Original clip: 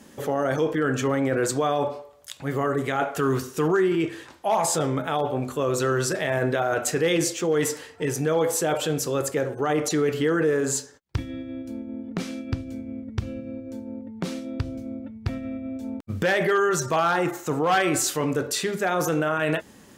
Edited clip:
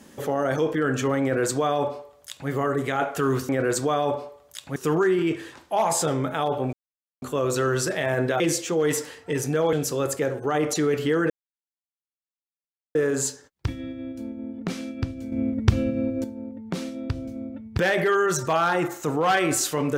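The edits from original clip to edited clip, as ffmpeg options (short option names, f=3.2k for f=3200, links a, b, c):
-filter_complex "[0:a]asplit=10[a][b][c][d][e][f][g][h][i][j];[a]atrim=end=3.492[k];[b]atrim=start=1.218:end=2.492[l];[c]atrim=start=3.488:end=5.46,asetpts=PTS-STARTPTS,afade=t=out:st=1.968:d=0.004:c=hsin,apad=pad_dur=0.49[m];[d]atrim=start=5.46:end=6.642,asetpts=PTS-STARTPTS,afade=t=in:d=0.004:c=hsin[n];[e]atrim=start=7.118:end=8.452[o];[f]atrim=start=8.878:end=10.45,asetpts=PTS-STARTPTS,afade=t=out:st=1.568:d=0.004:c=hsin,apad=pad_dur=1.65[p];[g]atrim=start=10.45:end=12.822,asetpts=PTS-STARTPTS,afade=t=in:d=0.004:c=hsin[q];[h]atrim=start=12.818:end=13.742,asetpts=PTS-STARTPTS,volume=9.5dB[r];[i]atrim=start=13.738:end=15.282[s];[j]atrim=start=16.208[t];[k][l]acrossfade=d=0.004:c1=hsin:c2=hsin[u];[m][n]concat=n=2:v=0:a=1[v];[u][v]acrossfade=d=0.004:c1=hsin:c2=hsin[w];[w][o]acrossfade=d=0.004:c1=hsin:c2=hsin[x];[p][q]concat=n=2:v=0:a=1[y];[x][y]acrossfade=d=0.004:c1=hsin:c2=hsin[z];[z][r]acrossfade=d=0.004:c1=hsin:c2=hsin[aa];[aa][s]acrossfade=d=0.004:c1=hsin:c2=hsin[ab];[ab][t]acrossfade=d=0.004:c1=hsin:c2=hsin"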